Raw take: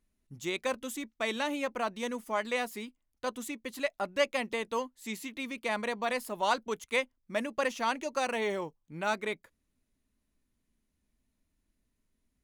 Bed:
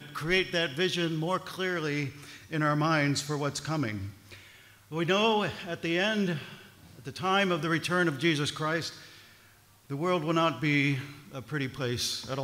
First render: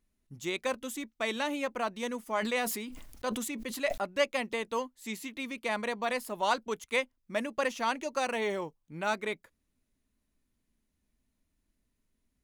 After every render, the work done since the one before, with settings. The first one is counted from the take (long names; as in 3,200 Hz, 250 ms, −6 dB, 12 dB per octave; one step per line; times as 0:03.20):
0:02.38–0:03.98: level that may fall only so fast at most 38 dB per second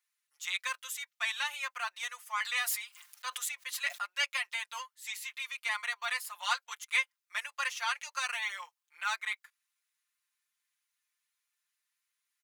inverse Chebyshev high-pass filter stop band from 260 Hz, stop band 70 dB
comb filter 5.7 ms, depth 96%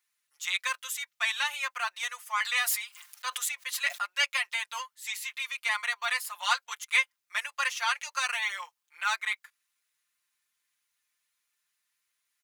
level +4.5 dB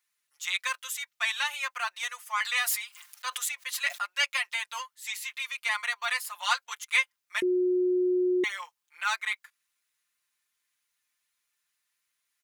0:07.42–0:08.44: beep over 363 Hz −22 dBFS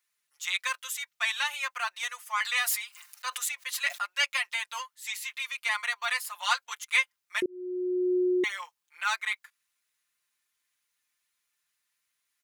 0:02.90–0:03.46: notch filter 3,300 Hz
0:07.46–0:08.15: fade in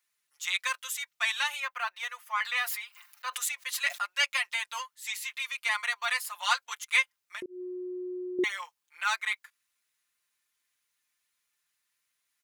0:01.60–0:03.34: parametric band 8,000 Hz −10.5 dB 1.7 octaves
0:07.02–0:08.39: downward compressor, threshold −36 dBFS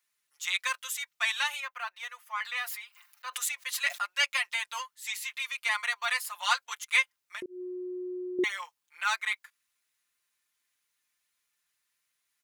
0:01.61–0:03.35: clip gain −4 dB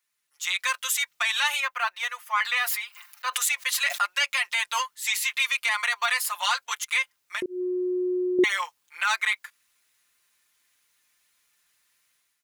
automatic gain control gain up to 10.5 dB
brickwall limiter −14 dBFS, peak gain reduction 11 dB